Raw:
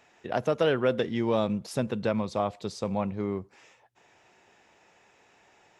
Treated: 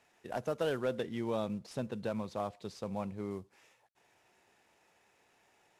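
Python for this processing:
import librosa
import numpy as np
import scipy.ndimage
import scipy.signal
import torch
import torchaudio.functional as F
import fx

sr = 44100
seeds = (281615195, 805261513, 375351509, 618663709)

y = fx.cvsd(x, sr, bps=64000)
y = fx.high_shelf(y, sr, hz=9300.0, db=-8.5, at=(0.81, 3.31))
y = y * librosa.db_to_amplitude(-8.5)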